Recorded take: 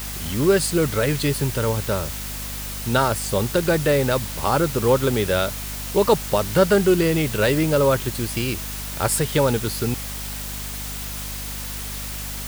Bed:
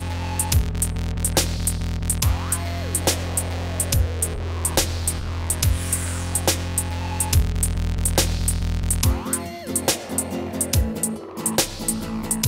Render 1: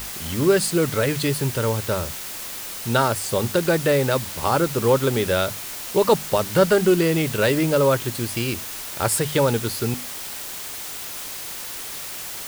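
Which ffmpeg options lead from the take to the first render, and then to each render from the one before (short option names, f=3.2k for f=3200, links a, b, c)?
-af "bandreject=f=50:t=h:w=6,bandreject=f=100:t=h:w=6,bandreject=f=150:t=h:w=6,bandreject=f=200:t=h:w=6,bandreject=f=250:t=h:w=6"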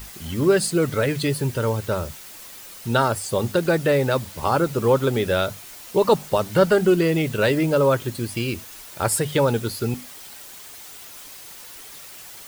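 -af "afftdn=nr=9:nf=-33"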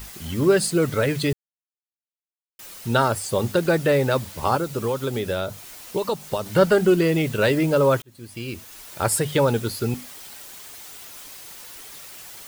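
-filter_complex "[0:a]asettb=1/sr,asplit=3[a][b][c];[a]atrim=end=4.554[d];[b]atrim=start=4.55:end=6.46,asetpts=PTS-STARTPTS,afade=t=in:d=0.004:c=qsin,afade=t=out:st=1.906:d=0.004:c=qsin,acrossover=split=1300|2700[e][f][g];[e]acompressor=threshold=-23dB:ratio=4[h];[f]acompressor=threshold=-42dB:ratio=4[i];[g]acompressor=threshold=-36dB:ratio=4[j];[h][i][j]amix=inputs=3:normalize=0[k];[c]atrim=start=6.456[l];[d][k]acrossfade=d=0.004:c1=hsin:c2=qsin[m];[m][l]acrossfade=d=0.004:c1=qsin:c2=hsin,asplit=4[n][o][p][q];[n]atrim=end=1.33,asetpts=PTS-STARTPTS,afade=t=out:st=1.326:d=0.004:c=hsin[r];[o]atrim=start=1.33:end=2.59,asetpts=PTS-STARTPTS,volume=0[s];[p]atrim=start=2.59:end=8.02,asetpts=PTS-STARTPTS,afade=t=in:d=0.004:c=hsin,afade=t=out:st=5.426:d=0.004:c=hsin[t];[q]atrim=start=8.02,asetpts=PTS-STARTPTS,afade=t=in:d=0.91[u];[r][s][t][u]concat=n=4:v=0:a=1"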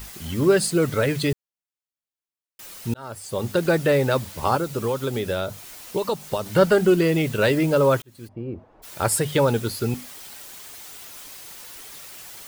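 -filter_complex "[0:a]asplit=3[a][b][c];[a]afade=t=out:st=8.27:d=0.02[d];[b]lowpass=f=690:t=q:w=1.7,afade=t=in:st=8.27:d=0.02,afade=t=out:st=8.82:d=0.02[e];[c]afade=t=in:st=8.82:d=0.02[f];[d][e][f]amix=inputs=3:normalize=0,asplit=2[g][h];[g]atrim=end=2.94,asetpts=PTS-STARTPTS,afade=t=out:st=2.936:d=0.004:c=hsin[i];[h]atrim=start=2.94,asetpts=PTS-STARTPTS,afade=t=in:d=0.71[j];[i][j]concat=n=2:v=0:a=1"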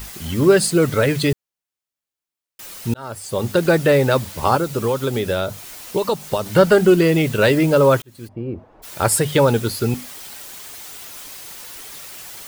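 -af "volume=4.5dB,alimiter=limit=-1dB:level=0:latency=1"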